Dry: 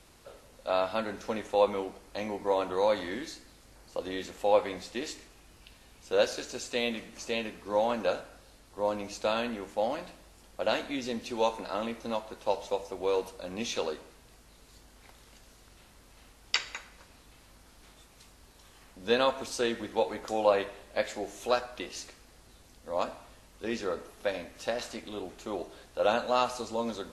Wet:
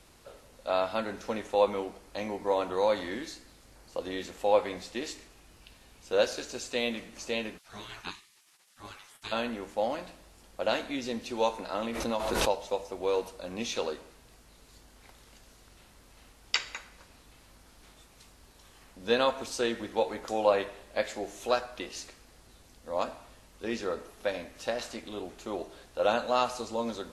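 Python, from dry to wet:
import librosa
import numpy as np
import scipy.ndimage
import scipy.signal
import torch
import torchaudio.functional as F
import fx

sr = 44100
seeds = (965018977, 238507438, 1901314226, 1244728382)

y = fx.spec_gate(x, sr, threshold_db=-20, keep='weak', at=(7.57, 9.31), fade=0.02)
y = fx.pre_swell(y, sr, db_per_s=30.0, at=(11.82, 12.58))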